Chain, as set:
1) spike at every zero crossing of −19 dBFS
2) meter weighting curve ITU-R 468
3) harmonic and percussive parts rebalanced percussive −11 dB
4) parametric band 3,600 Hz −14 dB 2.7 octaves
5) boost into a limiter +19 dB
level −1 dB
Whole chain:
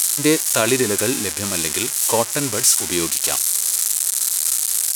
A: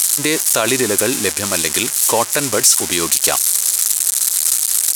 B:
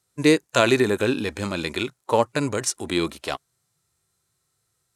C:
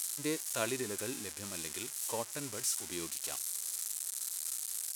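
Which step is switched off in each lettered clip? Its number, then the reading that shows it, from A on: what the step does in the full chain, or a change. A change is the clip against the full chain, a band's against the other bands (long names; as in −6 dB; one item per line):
3, 125 Hz band −4.0 dB
1, distortion level −4 dB
5, change in crest factor +5.0 dB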